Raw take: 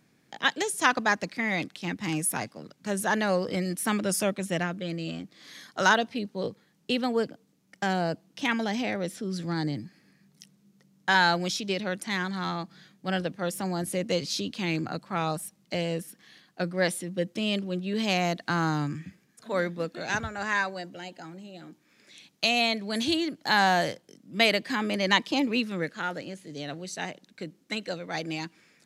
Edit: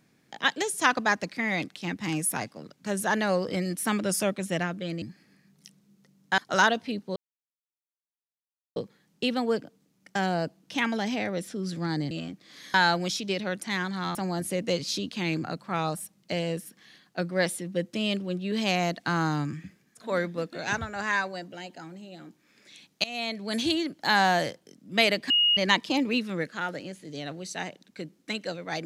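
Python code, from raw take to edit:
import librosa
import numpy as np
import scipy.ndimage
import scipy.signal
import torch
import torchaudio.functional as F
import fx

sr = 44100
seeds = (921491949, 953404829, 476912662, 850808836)

y = fx.edit(x, sr, fx.swap(start_s=5.02, length_s=0.63, other_s=9.78, other_length_s=1.36),
    fx.insert_silence(at_s=6.43, length_s=1.6),
    fx.cut(start_s=12.55, length_s=1.02),
    fx.fade_in_from(start_s=22.46, length_s=0.49, floor_db=-18.5),
    fx.bleep(start_s=24.72, length_s=0.27, hz=2870.0, db=-18.5), tone=tone)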